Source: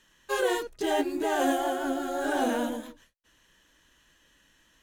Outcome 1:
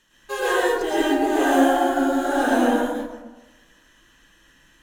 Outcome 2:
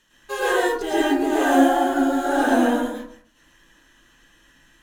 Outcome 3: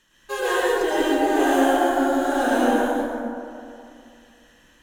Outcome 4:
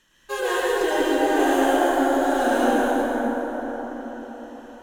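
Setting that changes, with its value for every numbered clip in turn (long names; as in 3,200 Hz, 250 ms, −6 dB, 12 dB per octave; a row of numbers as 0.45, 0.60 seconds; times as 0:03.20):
dense smooth reverb, RT60: 1.1, 0.51, 2.5, 5.3 seconds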